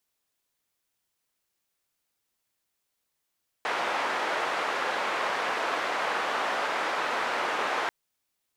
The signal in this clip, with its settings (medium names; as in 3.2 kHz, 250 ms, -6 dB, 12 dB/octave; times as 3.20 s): noise band 530–1400 Hz, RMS -29 dBFS 4.24 s